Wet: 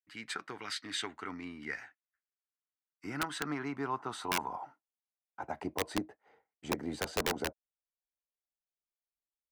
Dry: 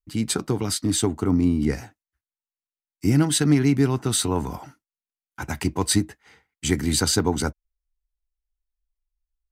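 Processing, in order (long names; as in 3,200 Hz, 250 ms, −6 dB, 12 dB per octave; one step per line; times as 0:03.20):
band-pass filter sweep 1,800 Hz → 610 Hz, 0:02.00–0:05.80
wrap-around overflow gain 23 dB
0:00.62–0:01.52: dynamic equaliser 3,400 Hz, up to +6 dB, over −53 dBFS, Q 0.82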